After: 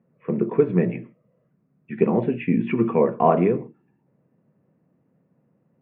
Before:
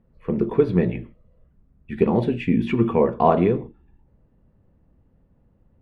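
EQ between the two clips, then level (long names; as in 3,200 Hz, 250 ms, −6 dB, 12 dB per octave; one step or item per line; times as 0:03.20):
elliptic band-pass filter 140–2,500 Hz, stop band 40 dB
notch filter 850 Hz, Q 14
0.0 dB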